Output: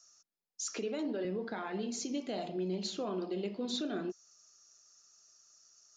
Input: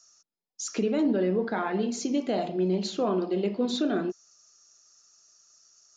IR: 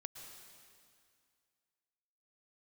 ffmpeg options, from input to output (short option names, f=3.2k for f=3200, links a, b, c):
-filter_complex "[0:a]asettb=1/sr,asplit=3[a][b][c];[a]atrim=end=0.744[d];[b]atrim=start=0.74:end=1.25,asetpts=PTS-STARTPTS,afade=t=in:d=0.004:c=qsin,afade=t=out:st=0.506:d=0.004:c=qsin,highpass=300[e];[c]atrim=start=1.246[f];[d][e]acrossfade=d=0.004:c1=hsin:c2=qsin[g];[g][f]acrossfade=d=0.004:c1=qsin:c2=hsin,acrossover=split=2600[h][i];[h]alimiter=level_in=1dB:limit=-24dB:level=0:latency=1:release=347,volume=-1dB[j];[j][i]amix=inputs=2:normalize=0,volume=-3.5dB"